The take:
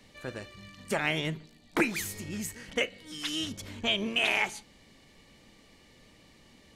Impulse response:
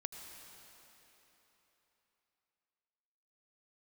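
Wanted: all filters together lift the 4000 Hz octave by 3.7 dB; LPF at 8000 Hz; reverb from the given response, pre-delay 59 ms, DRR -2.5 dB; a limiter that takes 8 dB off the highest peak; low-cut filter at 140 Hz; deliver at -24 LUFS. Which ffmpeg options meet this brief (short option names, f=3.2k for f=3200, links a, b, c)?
-filter_complex "[0:a]highpass=140,lowpass=8k,equalizer=f=4k:t=o:g=5.5,alimiter=limit=-18.5dB:level=0:latency=1,asplit=2[a][b];[1:a]atrim=start_sample=2205,adelay=59[c];[b][c]afir=irnorm=-1:irlink=0,volume=4.5dB[d];[a][d]amix=inputs=2:normalize=0,volume=4.5dB"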